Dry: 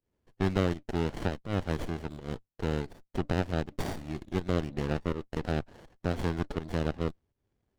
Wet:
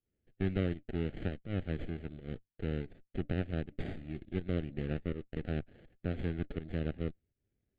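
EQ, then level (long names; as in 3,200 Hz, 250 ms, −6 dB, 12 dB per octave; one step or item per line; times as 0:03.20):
high-frequency loss of the air 110 metres
high-shelf EQ 8,700 Hz −11 dB
phaser with its sweep stopped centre 2,400 Hz, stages 4
−3.5 dB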